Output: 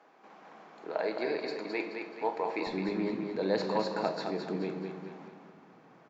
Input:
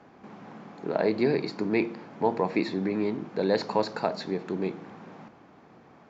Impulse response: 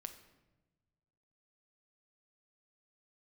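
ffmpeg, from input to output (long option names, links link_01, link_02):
-filter_complex "[0:a]asetnsamples=nb_out_samples=441:pad=0,asendcmd='2.67 highpass f 160',highpass=460,aecho=1:1:214|428|642|856|1070:0.501|0.21|0.0884|0.0371|0.0156[link_01];[1:a]atrim=start_sample=2205[link_02];[link_01][link_02]afir=irnorm=-1:irlink=0"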